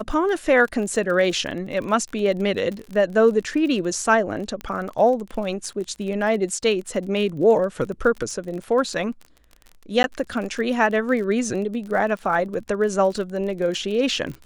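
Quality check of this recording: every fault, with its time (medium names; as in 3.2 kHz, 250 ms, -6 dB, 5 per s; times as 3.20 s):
crackle 34 per s -30 dBFS
4.61 s: pop -18 dBFS
10.03–10.04 s: dropout 11 ms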